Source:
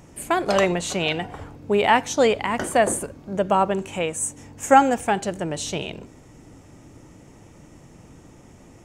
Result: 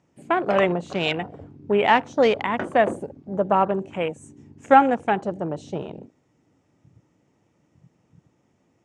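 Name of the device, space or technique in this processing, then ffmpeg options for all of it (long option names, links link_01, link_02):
over-cleaned archive recording: -af "highpass=110,lowpass=5900,afwtdn=0.0251"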